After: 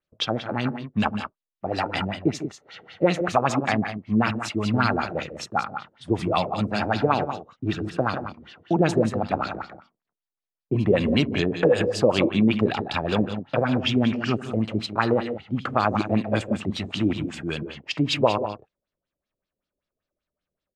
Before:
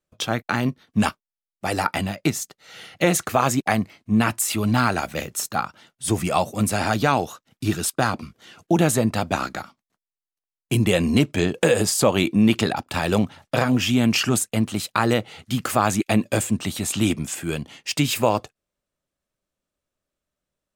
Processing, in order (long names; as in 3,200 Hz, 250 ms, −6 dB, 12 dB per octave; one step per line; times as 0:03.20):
multi-tap delay 73/149/178 ms −17/−12/−10.5 dB
auto-filter low-pass sine 5.2 Hz 400–4,700 Hz
level −4 dB